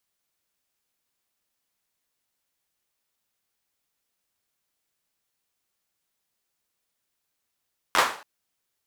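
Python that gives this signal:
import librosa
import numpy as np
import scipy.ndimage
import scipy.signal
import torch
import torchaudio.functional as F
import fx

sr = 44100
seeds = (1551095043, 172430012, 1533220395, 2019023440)

y = fx.drum_clap(sr, seeds[0], length_s=0.28, bursts=4, spacing_ms=11, hz=980.0, decay_s=0.42)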